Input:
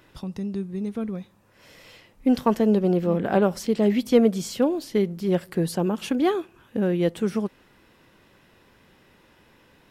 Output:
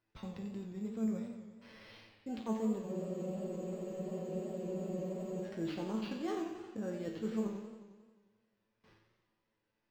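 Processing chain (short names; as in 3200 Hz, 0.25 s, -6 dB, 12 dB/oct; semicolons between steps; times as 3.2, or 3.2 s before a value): reverse; compressor, threshold -29 dBFS, peak gain reduction 16.5 dB; reverse; gate with hold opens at -45 dBFS; resonator 110 Hz, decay 0.55 s, harmonics all, mix 90%; careless resampling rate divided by 6×, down none, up hold; running mean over 4 samples; spectral freeze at 2.85, 2.59 s; warbling echo 89 ms, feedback 66%, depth 126 cents, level -9 dB; gain +5 dB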